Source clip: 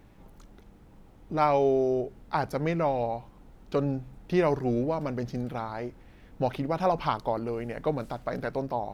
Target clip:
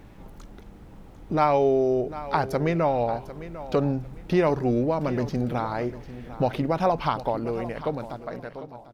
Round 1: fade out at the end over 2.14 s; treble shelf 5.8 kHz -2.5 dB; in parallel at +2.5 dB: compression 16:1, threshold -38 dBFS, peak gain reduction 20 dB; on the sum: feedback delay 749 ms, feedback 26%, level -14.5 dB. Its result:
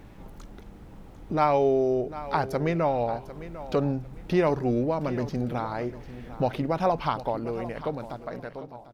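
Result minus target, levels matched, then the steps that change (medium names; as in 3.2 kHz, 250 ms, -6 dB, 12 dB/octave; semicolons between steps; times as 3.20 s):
compression: peak gain reduction +7 dB
change: compression 16:1, threshold -30.5 dBFS, peak gain reduction 13 dB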